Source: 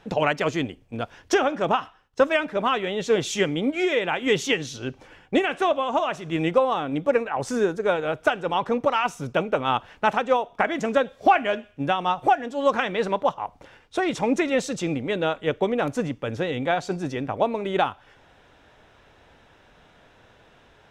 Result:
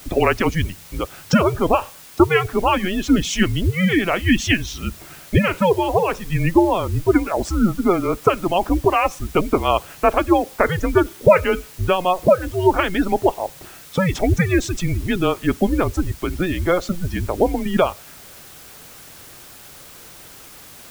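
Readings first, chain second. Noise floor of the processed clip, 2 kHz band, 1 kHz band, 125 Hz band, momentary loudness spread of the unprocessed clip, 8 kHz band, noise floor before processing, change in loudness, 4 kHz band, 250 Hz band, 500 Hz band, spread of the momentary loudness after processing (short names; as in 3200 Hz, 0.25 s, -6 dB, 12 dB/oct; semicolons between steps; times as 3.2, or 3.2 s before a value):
-42 dBFS, +3.0 dB, +2.0 dB, +12.0 dB, 7 LU, +6.0 dB, -56 dBFS, +5.0 dB, +3.0 dB, +8.0 dB, +4.0 dB, 22 LU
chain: frequency shift -180 Hz; spectral gate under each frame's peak -25 dB strong; requantised 8-bit, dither triangular; gain +5.5 dB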